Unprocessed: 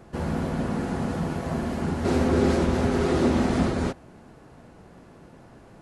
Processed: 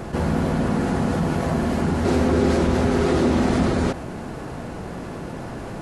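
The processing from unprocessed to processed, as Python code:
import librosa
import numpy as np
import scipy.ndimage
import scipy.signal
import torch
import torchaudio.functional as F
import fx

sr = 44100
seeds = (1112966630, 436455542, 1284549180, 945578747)

y = fx.env_flatten(x, sr, amount_pct=50)
y = y * 10.0 ** (1.5 / 20.0)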